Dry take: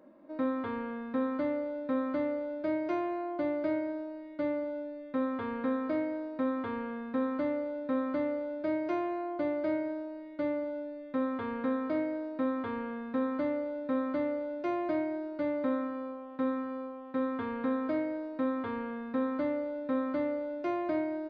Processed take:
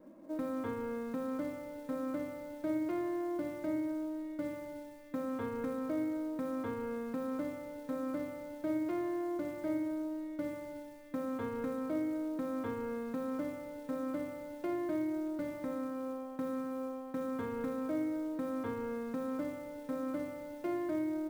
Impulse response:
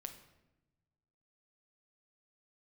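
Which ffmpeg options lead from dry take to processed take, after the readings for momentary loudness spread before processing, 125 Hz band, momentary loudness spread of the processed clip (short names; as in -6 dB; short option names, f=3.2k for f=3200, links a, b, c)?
5 LU, +2.0 dB, 6 LU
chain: -filter_complex "[0:a]adynamicequalizer=threshold=0.00282:dfrequency=700:dqfactor=7.9:tfrequency=700:tqfactor=7.9:attack=5:release=100:ratio=0.375:range=1.5:mode=cutabove:tftype=bell,alimiter=level_in=5.5dB:limit=-24dB:level=0:latency=1:release=410,volume=-5.5dB,lowshelf=f=390:g=8,acrusher=bits=7:mode=log:mix=0:aa=0.000001[a];[1:a]atrim=start_sample=2205,afade=t=out:st=0.36:d=0.01,atrim=end_sample=16317[b];[a][b]afir=irnorm=-1:irlink=0,volume=2dB"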